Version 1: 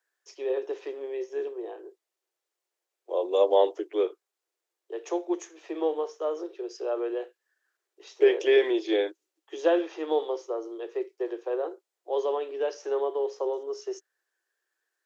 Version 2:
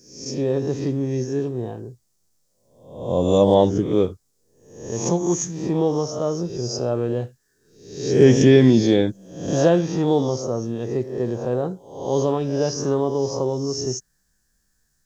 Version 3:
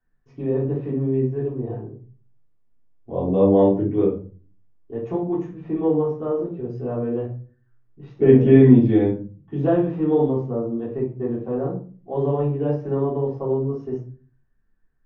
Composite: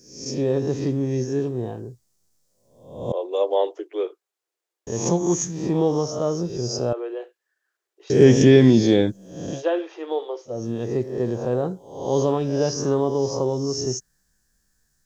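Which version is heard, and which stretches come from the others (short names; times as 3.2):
2
3.12–4.87 from 1
6.93–8.1 from 1
9.51–10.57 from 1, crossfade 0.24 s
not used: 3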